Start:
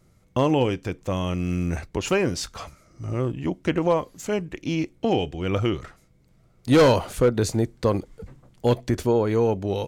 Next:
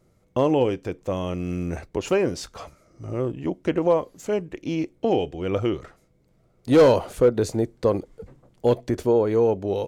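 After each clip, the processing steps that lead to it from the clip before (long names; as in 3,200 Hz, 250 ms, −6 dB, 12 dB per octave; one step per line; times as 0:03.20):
parametric band 480 Hz +7.5 dB 1.8 octaves
level −5 dB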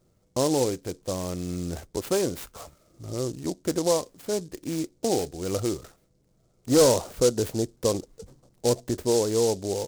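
short delay modulated by noise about 5,900 Hz, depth 0.091 ms
level −3.5 dB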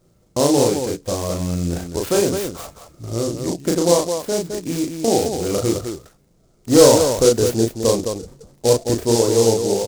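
loudspeakers that aren't time-aligned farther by 12 metres −2 dB, 73 metres −6 dB
level +5.5 dB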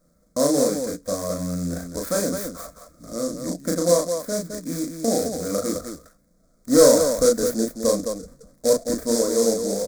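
phaser with its sweep stopped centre 570 Hz, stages 8
level −1 dB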